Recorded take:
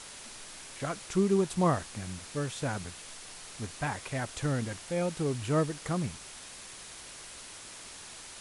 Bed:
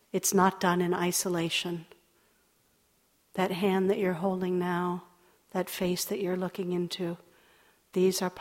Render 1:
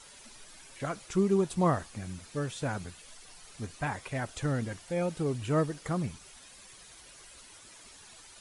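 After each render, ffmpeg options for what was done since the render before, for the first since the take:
ffmpeg -i in.wav -af "afftdn=noise_reduction=10:noise_floor=-47" out.wav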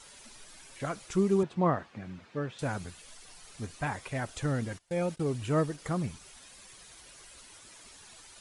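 ffmpeg -i in.wav -filter_complex "[0:a]asettb=1/sr,asplit=3[link_01][link_02][link_03];[link_01]atrim=end=1.434[link_04];[link_02]atrim=start=1.43:end=2.59,asetpts=PTS-STARTPTS,afade=type=in:duration=0.004:curve=qsin,afade=type=out:start_time=1.156:duration=0.004:curve=qsin,highpass=130,lowpass=2600[link_05];[link_03]atrim=start=2.586[link_06];[link_04][link_05]acrossfade=duration=0.004:curve1=hsin:curve2=qsin[link_07];[link_07][link_06]acrossfade=duration=0.004:curve1=qsin:curve2=hsin,asplit=3[link_08][link_09][link_10];[link_08]afade=type=out:start_time=4.77:duration=0.02[link_11];[link_09]agate=range=-20dB:threshold=-44dB:ratio=16:release=100:detection=peak,afade=type=in:start_time=4.77:duration=0.02,afade=type=out:start_time=5.77:duration=0.02[link_12];[link_10]afade=type=in:start_time=5.77:duration=0.02[link_13];[link_11][link_12][link_13]amix=inputs=3:normalize=0" out.wav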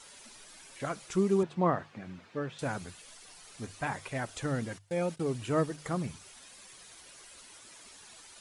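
ffmpeg -i in.wav -af "lowshelf=frequency=88:gain=-8.5,bandreject=frequency=50:width_type=h:width=6,bandreject=frequency=100:width_type=h:width=6,bandreject=frequency=150:width_type=h:width=6" out.wav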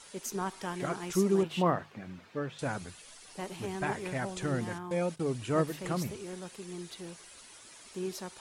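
ffmpeg -i in.wav -i bed.wav -filter_complex "[1:a]volume=-11.5dB[link_01];[0:a][link_01]amix=inputs=2:normalize=0" out.wav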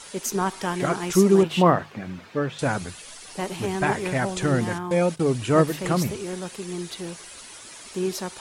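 ffmpeg -i in.wav -af "volume=10dB" out.wav

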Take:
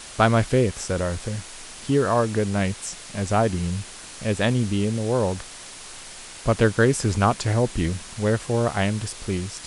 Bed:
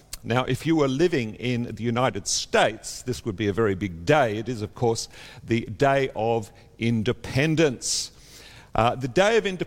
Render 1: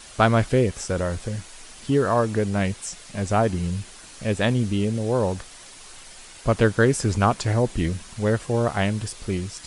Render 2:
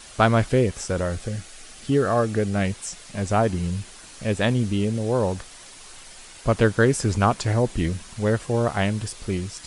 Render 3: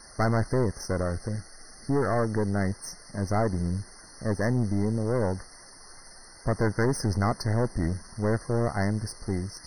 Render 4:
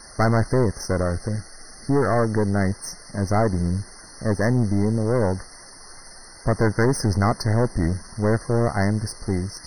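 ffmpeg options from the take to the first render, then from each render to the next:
ffmpeg -i in.wav -af "afftdn=noise_reduction=6:noise_floor=-41" out.wav
ffmpeg -i in.wav -filter_complex "[0:a]asettb=1/sr,asplit=3[link_01][link_02][link_03];[link_01]atrim=end=1.064[link_04];[link_02]atrim=start=1.06:end=2.65,asetpts=PTS-STARTPTS,afade=type=in:duration=0.004:curve=qsin,afade=type=out:start_time=1.586:duration=0.004:curve=qsin,asuperstop=centerf=970:order=4:qfactor=5.8[link_05];[link_03]atrim=start=2.646[link_06];[link_04][link_05]acrossfade=duration=0.004:curve1=hsin:curve2=qsin[link_07];[link_07][link_06]acrossfade=duration=0.004:curve1=qsin:curve2=hsin" out.wav
ffmpeg -i in.wav -af "aeval=exprs='(tanh(10*val(0)+0.6)-tanh(0.6))/10':channel_layout=same,afftfilt=real='re*eq(mod(floor(b*sr/1024/2100),2),0)':imag='im*eq(mod(floor(b*sr/1024/2100),2),0)':win_size=1024:overlap=0.75" out.wav
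ffmpeg -i in.wav -af "volume=5.5dB" out.wav

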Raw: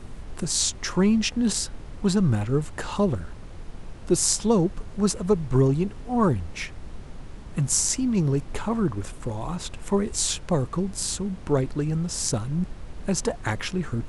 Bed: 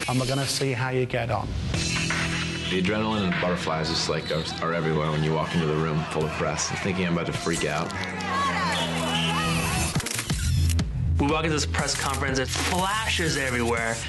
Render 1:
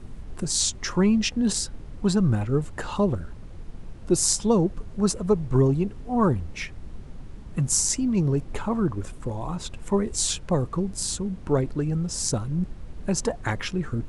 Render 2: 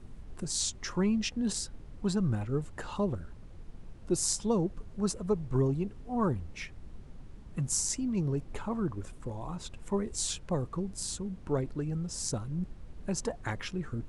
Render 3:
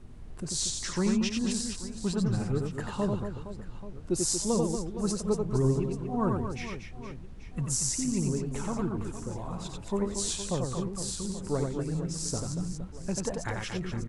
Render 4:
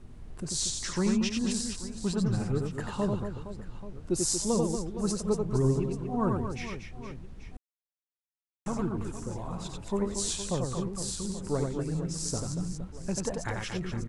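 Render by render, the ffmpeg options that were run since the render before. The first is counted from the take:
ffmpeg -i in.wav -af "afftdn=noise_reduction=6:noise_floor=-41" out.wav
ffmpeg -i in.wav -af "volume=-8dB" out.wav
ffmpeg -i in.wav -af "aecho=1:1:90|234|464.4|833|1423:0.631|0.398|0.251|0.158|0.1" out.wav
ffmpeg -i in.wav -filter_complex "[0:a]asplit=3[link_01][link_02][link_03];[link_01]atrim=end=7.57,asetpts=PTS-STARTPTS,afade=type=out:start_time=7.566:duration=0.004:curve=hsin[link_04];[link_02]atrim=start=7.57:end=8.66,asetpts=PTS-STARTPTS,volume=0[link_05];[link_03]atrim=start=8.66,asetpts=PTS-STARTPTS,afade=type=in:duration=0.004:curve=hsin[link_06];[link_04][link_05][link_06]concat=n=3:v=0:a=1" out.wav

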